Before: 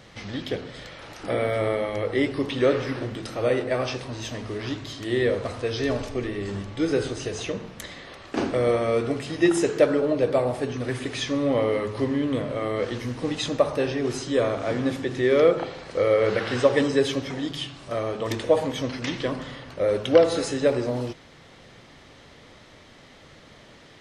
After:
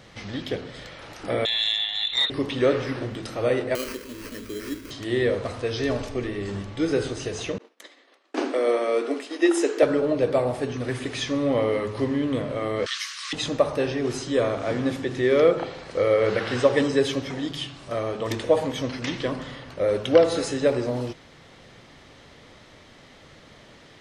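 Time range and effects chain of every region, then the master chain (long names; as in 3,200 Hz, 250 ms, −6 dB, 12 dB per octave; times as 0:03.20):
0:01.45–0:02.30: voice inversion scrambler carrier 4,000 Hz + saturating transformer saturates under 1,300 Hz
0:03.75–0:04.91: sample-rate reduction 3,600 Hz + phaser with its sweep stopped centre 320 Hz, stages 4
0:07.58–0:09.83: Butterworth high-pass 250 Hz 72 dB per octave + downward expander −33 dBFS
0:12.86–0:13.33: Chebyshev high-pass filter 1,100 Hz, order 6 + parametric band 5,300 Hz +14.5 dB 2.8 octaves
whole clip: no processing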